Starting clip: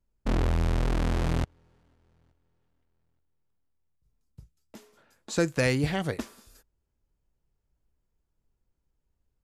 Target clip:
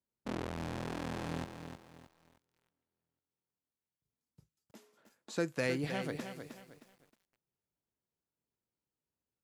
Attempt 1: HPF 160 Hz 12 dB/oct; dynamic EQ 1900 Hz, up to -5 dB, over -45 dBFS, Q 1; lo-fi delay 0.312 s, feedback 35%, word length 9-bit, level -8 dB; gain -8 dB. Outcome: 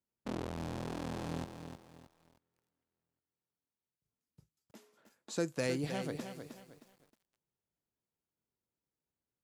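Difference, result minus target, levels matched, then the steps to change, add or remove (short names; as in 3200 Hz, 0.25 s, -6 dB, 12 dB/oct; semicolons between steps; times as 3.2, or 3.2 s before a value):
2000 Hz band -3.5 dB
change: dynamic EQ 7400 Hz, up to -5 dB, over -45 dBFS, Q 1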